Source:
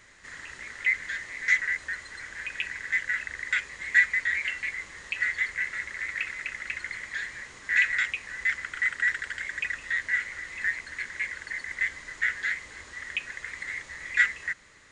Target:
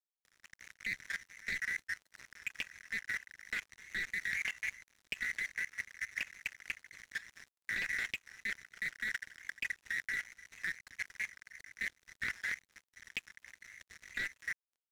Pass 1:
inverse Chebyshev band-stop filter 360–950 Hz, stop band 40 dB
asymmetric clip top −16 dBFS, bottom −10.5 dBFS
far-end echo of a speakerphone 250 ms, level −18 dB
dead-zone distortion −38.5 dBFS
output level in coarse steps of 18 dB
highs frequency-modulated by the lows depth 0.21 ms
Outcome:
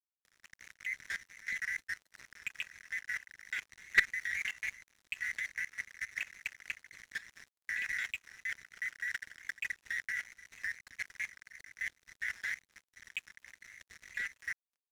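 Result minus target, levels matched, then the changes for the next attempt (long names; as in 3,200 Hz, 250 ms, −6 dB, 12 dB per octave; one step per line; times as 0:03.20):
asymmetric clip: distortion −10 dB
change: asymmetric clip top −23 dBFS, bottom −10.5 dBFS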